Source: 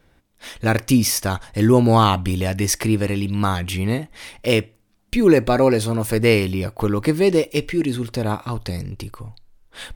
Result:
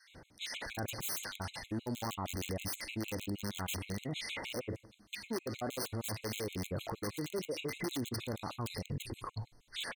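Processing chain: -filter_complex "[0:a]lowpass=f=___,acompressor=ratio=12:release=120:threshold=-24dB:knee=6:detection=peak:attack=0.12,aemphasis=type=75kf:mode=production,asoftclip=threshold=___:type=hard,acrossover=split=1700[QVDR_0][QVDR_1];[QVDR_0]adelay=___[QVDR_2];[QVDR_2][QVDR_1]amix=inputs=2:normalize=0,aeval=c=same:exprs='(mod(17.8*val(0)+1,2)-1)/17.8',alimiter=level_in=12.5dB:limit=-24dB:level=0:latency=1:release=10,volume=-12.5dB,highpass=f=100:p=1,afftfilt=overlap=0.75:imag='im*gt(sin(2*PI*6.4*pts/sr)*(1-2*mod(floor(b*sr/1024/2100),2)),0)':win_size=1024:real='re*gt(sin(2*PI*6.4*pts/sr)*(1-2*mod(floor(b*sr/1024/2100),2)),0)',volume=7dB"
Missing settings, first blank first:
4400, -26.5dB, 100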